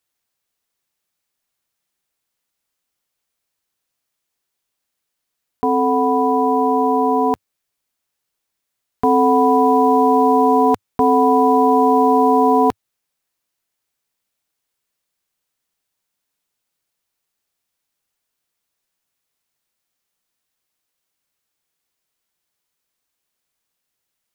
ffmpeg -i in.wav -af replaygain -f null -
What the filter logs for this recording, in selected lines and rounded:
track_gain = -1.4 dB
track_peak = 0.436